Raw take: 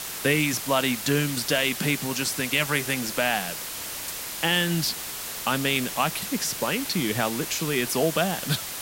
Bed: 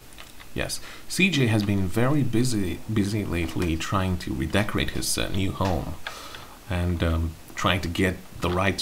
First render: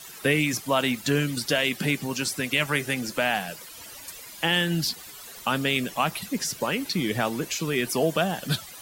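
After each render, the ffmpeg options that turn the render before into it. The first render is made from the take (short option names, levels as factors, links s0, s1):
-af "afftdn=nr=14:nf=-35"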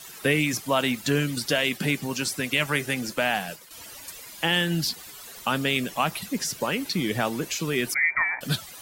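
-filter_complex "[0:a]asettb=1/sr,asplit=3[s0][s1][s2];[s0]atrim=end=1.604[s3];[s1]atrim=start=1.6:end=3.71,asetpts=PTS-STARTPTS,afade=t=in:d=0.004:c=qsin,afade=t=out:st=2.106:d=0.004:c=qsin,agate=range=0.0224:threshold=0.0126:ratio=3:release=100:detection=peak[s4];[s2]atrim=start=3.706[s5];[s3][s4]acrossfade=d=0.004:c1=hsin:c2=qsin[s6];[s6][s5]acrossfade=d=0.004:c1=qsin:c2=hsin,asettb=1/sr,asplit=3[s7][s8][s9];[s7]atrim=end=7.944[s10];[s8]atrim=start=7.94:end=8.41,asetpts=PTS-STARTPTS,afade=t=in:d=0.004:c=qsin,afade=t=out:st=0.466:d=0.004:c=qsin,lowpass=f=2100:t=q:w=0.5098,lowpass=f=2100:t=q:w=0.6013,lowpass=f=2100:t=q:w=0.9,lowpass=f=2100:t=q:w=2.563,afreqshift=-2500[s11];[s9]atrim=start=8.406[s12];[s10][s11]acrossfade=d=0.004:c1=hsin:c2=qsin[s13];[s13][s12]acrossfade=d=0.004:c1=qsin:c2=hsin"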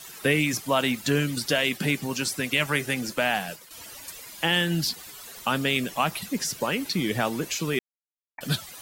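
-filter_complex "[0:a]asplit=3[s0][s1][s2];[s0]atrim=end=7.79,asetpts=PTS-STARTPTS,afade=t=out:st=7.786:d=0.004:c=hsin[s3];[s1]atrim=start=7.79:end=8.38,asetpts=PTS-STARTPTS,volume=0[s4];[s2]atrim=start=8.38,asetpts=PTS-STARTPTS,afade=t=in:d=0.004:c=hsin[s5];[s3][s4][s5]concat=n=3:v=0:a=1"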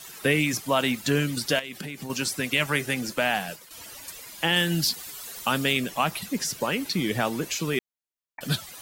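-filter_complex "[0:a]asettb=1/sr,asplit=3[s0][s1][s2];[s0]atrim=end=1.594[s3];[s1]atrim=start=1.59:end=2.1,asetpts=PTS-STARTPTS,afade=t=in:d=0.004:c=qsin,afade=t=out:st=0.506:d=0.004:c=qsin,acompressor=threshold=0.0282:ratio=16:attack=3.2:release=140:knee=1:detection=peak[s4];[s2]atrim=start=2.096[s5];[s3][s4]acrossfade=d=0.004:c1=hsin:c2=qsin[s6];[s6][s5]acrossfade=d=0.004:c1=qsin:c2=hsin,asettb=1/sr,asplit=3[s7][s8][s9];[s7]atrim=end=4.564[s10];[s8]atrim=start=4.56:end=5.73,asetpts=PTS-STARTPTS,afade=t=in:d=0.004:c=qsin,afade=t=out:st=1.166:d=0.004:c=qsin,highshelf=f=4300:g=5[s11];[s9]atrim=start=5.726[s12];[s10][s11]acrossfade=d=0.004:c1=hsin:c2=qsin[s13];[s13][s12]acrossfade=d=0.004:c1=qsin:c2=hsin"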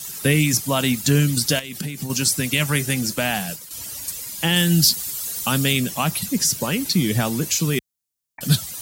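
-af "highpass=44,bass=f=250:g=12,treble=f=4000:g=12"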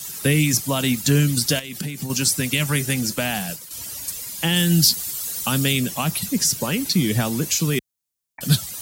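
-filter_complex "[0:a]acrossover=split=410|3000[s0][s1][s2];[s1]acompressor=threshold=0.0708:ratio=6[s3];[s0][s3][s2]amix=inputs=3:normalize=0"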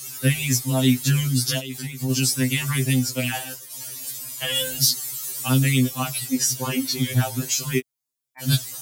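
-af "afftfilt=real='re*2.45*eq(mod(b,6),0)':imag='im*2.45*eq(mod(b,6),0)':win_size=2048:overlap=0.75"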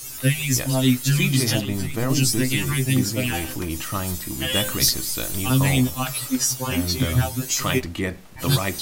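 -filter_complex "[1:a]volume=0.708[s0];[0:a][s0]amix=inputs=2:normalize=0"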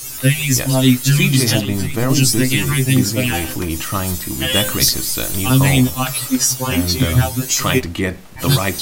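-af "volume=2,alimiter=limit=0.794:level=0:latency=1"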